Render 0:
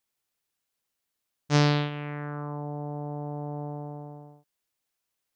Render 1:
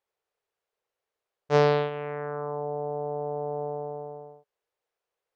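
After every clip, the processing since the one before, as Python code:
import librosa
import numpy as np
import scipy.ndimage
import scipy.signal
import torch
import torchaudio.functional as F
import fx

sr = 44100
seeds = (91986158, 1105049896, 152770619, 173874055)

y = fx.lowpass(x, sr, hz=1100.0, slope=6)
y = fx.low_shelf_res(y, sr, hz=340.0, db=-8.5, q=3.0)
y = y * 10.0 ** (4.5 / 20.0)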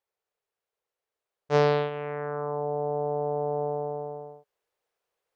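y = fx.rider(x, sr, range_db=3, speed_s=2.0)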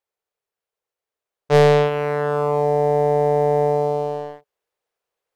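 y = fx.leveller(x, sr, passes=2)
y = y * 10.0 ** (4.0 / 20.0)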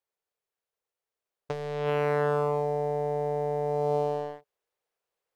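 y = fx.over_compress(x, sr, threshold_db=-21.0, ratio=-1.0)
y = y * 10.0 ** (-7.0 / 20.0)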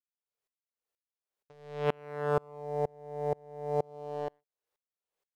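y = fx.tremolo_decay(x, sr, direction='swelling', hz=2.1, depth_db=33)
y = y * 10.0 ** (2.5 / 20.0)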